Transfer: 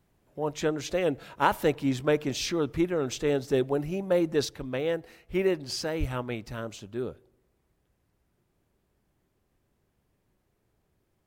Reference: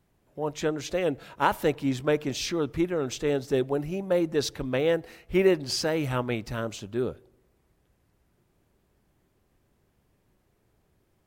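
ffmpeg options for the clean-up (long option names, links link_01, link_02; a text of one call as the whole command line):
ffmpeg -i in.wav -filter_complex "[0:a]asplit=3[link_01][link_02][link_03];[link_01]afade=type=out:start_time=5.99:duration=0.02[link_04];[link_02]highpass=frequency=140:width=0.5412,highpass=frequency=140:width=1.3066,afade=type=in:start_time=5.99:duration=0.02,afade=type=out:start_time=6.11:duration=0.02[link_05];[link_03]afade=type=in:start_time=6.11:duration=0.02[link_06];[link_04][link_05][link_06]amix=inputs=3:normalize=0,asetnsamples=nb_out_samples=441:pad=0,asendcmd='4.45 volume volume 4.5dB',volume=0dB" out.wav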